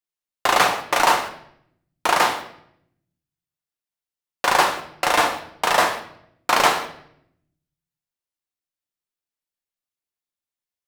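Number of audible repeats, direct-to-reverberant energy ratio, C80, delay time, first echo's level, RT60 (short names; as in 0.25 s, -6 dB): none, 4.0 dB, 13.0 dB, none, none, 0.70 s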